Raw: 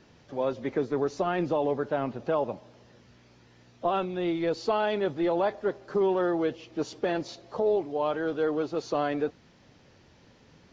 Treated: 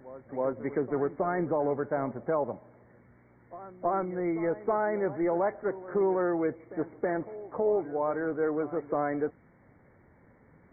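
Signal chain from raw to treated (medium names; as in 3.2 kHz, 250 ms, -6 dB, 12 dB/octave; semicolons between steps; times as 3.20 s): brick-wall FIR low-pass 2.3 kHz; reverse echo 322 ms -16 dB; trim -1.5 dB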